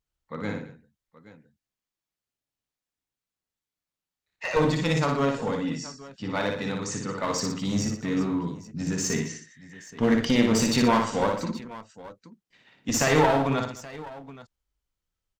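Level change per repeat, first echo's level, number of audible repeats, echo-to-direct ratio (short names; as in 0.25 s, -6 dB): no steady repeat, -4.0 dB, 4, -3.0 dB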